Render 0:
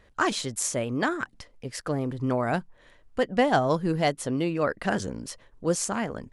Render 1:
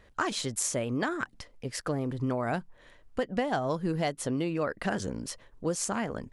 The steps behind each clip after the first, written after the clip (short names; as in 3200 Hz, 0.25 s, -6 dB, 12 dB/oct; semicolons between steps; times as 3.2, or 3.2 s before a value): compressor 5:1, threshold -26 dBFS, peak gain reduction 9 dB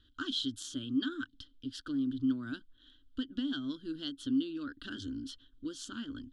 EQ curve 110 Hz 0 dB, 180 Hz -20 dB, 270 Hz +12 dB, 450 Hz -18 dB, 780 Hz -30 dB, 1500 Hz +1 dB, 2200 Hz -26 dB, 3200 Hz +14 dB, 5700 Hz -6 dB, 10000 Hz -13 dB; gain -6.5 dB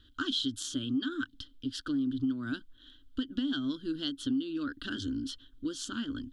compressor, threshold -33 dBFS, peak gain reduction 7.5 dB; gain +5.5 dB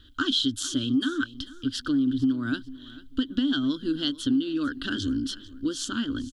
feedback echo 0.445 s, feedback 26%, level -18.5 dB; gain +7 dB